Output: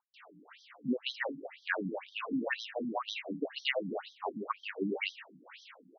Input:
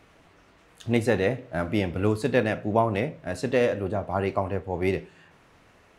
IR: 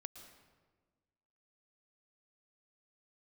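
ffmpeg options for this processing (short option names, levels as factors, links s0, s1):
-filter_complex "[0:a]acrossover=split=220|1500[s0][s1][s2];[s2]dynaudnorm=f=260:g=7:m=2.51[s3];[s0][s1][s3]amix=inputs=3:normalize=0,asetrate=46722,aresample=44100,atempo=0.943874,bandreject=f=360:w=12,acrossover=split=480[s4][s5];[s5]adelay=140[s6];[s4][s6]amix=inputs=2:normalize=0,acompressor=threshold=0.0178:ratio=4,afftfilt=real='re*between(b*sr/1024,230*pow(4500/230,0.5+0.5*sin(2*PI*2*pts/sr))/1.41,230*pow(4500/230,0.5+0.5*sin(2*PI*2*pts/sr))*1.41)':imag='im*between(b*sr/1024,230*pow(4500/230,0.5+0.5*sin(2*PI*2*pts/sr))/1.41,230*pow(4500/230,0.5+0.5*sin(2*PI*2*pts/sr))*1.41)':win_size=1024:overlap=0.75,volume=2.82"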